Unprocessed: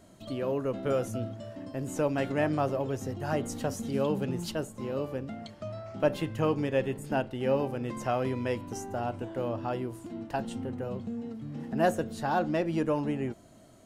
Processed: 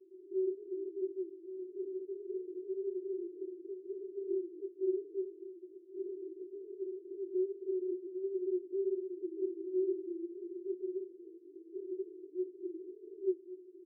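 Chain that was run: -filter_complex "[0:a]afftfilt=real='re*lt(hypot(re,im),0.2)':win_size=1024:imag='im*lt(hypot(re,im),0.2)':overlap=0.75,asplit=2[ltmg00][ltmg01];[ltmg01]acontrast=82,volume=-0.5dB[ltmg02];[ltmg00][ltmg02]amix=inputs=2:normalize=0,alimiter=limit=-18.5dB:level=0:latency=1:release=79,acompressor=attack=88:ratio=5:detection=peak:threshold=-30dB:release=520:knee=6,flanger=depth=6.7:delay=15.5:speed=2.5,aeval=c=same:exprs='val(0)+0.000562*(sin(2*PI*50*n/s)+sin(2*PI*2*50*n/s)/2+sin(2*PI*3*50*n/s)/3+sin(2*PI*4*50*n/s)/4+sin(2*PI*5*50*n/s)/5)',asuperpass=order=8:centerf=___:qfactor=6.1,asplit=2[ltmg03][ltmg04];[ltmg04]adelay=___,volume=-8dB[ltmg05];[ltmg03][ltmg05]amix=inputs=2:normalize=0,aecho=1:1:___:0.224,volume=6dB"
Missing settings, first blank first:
370, 16, 1116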